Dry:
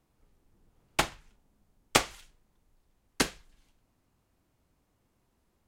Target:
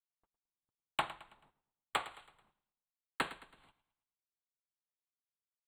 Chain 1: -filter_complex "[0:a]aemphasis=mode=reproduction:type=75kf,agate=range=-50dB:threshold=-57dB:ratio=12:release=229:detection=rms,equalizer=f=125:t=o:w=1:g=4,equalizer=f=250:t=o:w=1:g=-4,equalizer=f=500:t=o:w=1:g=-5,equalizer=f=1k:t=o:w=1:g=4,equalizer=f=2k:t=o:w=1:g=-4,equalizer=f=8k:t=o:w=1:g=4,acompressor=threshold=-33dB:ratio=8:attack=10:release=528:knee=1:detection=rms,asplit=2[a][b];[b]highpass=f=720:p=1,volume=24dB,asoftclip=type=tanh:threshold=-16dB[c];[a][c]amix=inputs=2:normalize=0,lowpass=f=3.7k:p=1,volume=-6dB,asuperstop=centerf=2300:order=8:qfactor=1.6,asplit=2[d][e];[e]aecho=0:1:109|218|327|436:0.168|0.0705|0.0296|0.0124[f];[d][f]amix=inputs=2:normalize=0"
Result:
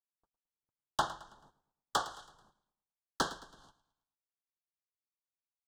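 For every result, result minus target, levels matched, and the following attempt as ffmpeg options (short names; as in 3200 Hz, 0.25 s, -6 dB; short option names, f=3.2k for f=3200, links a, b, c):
compressor: peak gain reduction -7.5 dB; 8000 Hz band +6.5 dB
-filter_complex "[0:a]aemphasis=mode=reproduction:type=75kf,agate=range=-50dB:threshold=-57dB:ratio=12:release=229:detection=rms,equalizer=f=125:t=o:w=1:g=4,equalizer=f=250:t=o:w=1:g=-4,equalizer=f=500:t=o:w=1:g=-5,equalizer=f=1k:t=o:w=1:g=4,equalizer=f=2k:t=o:w=1:g=-4,equalizer=f=8k:t=o:w=1:g=4,acompressor=threshold=-41.5dB:ratio=8:attack=10:release=528:knee=1:detection=rms,asplit=2[a][b];[b]highpass=f=720:p=1,volume=24dB,asoftclip=type=tanh:threshold=-16dB[c];[a][c]amix=inputs=2:normalize=0,lowpass=f=3.7k:p=1,volume=-6dB,asuperstop=centerf=2300:order=8:qfactor=1.6,asplit=2[d][e];[e]aecho=0:1:109|218|327|436:0.168|0.0705|0.0296|0.0124[f];[d][f]amix=inputs=2:normalize=0"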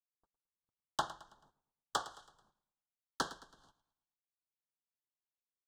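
8000 Hz band +7.0 dB
-filter_complex "[0:a]aemphasis=mode=reproduction:type=75kf,agate=range=-50dB:threshold=-57dB:ratio=12:release=229:detection=rms,equalizer=f=125:t=o:w=1:g=4,equalizer=f=250:t=o:w=1:g=-4,equalizer=f=500:t=o:w=1:g=-5,equalizer=f=1k:t=o:w=1:g=4,equalizer=f=2k:t=o:w=1:g=-4,equalizer=f=8k:t=o:w=1:g=4,acompressor=threshold=-41.5dB:ratio=8:attack=10:release=528:knee=1:detection=rms,asplit=2[a][b];[b]highpass=f=720:p=1,volume=24dB,asoftclip=type=tanh:threshold=-16dB[c];[a][c]amix=inputs=2:normalize=0,lowpass=f=3.7k:p=1,volume=-6dB,asuperstop=centerf=5700:order=8:qfactor=1.6,asplit=2[d][e];[e]aecho=0:1:109|218|327|436:0.168|0.0705|0.0296|0.0124[f];[d][f]amix=inputs=2:normalize=0"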